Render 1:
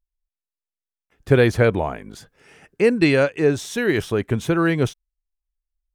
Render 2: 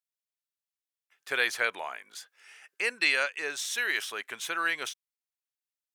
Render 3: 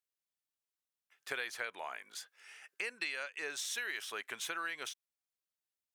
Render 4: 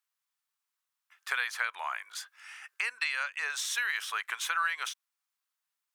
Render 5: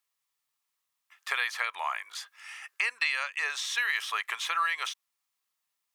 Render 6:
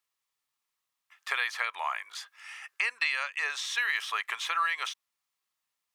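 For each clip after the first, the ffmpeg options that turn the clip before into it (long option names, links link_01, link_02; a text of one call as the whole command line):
ffmpeg -i in.wav -af "highpass=1500" out.wav
ffmpeg -i in.wav -af "acompressor=threshold=-34dB:ratio=6,volume=-2dB" out.wav
ffmpeg -i in.wav -af "highpass=frequency=1100:width_type=q:width=2,volume=5dB" out.wav
ffmpeg -i in.wav -filter_complex "[0:a]acrossover=split=5400[link_01][link_02];[link_02]acompressor=threshold=-48dB:ratio=4:attack=1:release=60[link_03];[link_01][link_03]amix=inputs=2:normalize=0,bandreject=frequency=1500:width=6.5,volume=4dB" out.wav
ffmpeg -i in.wav -af "highshelf=frequency=7300:gain=-4.5" out.wav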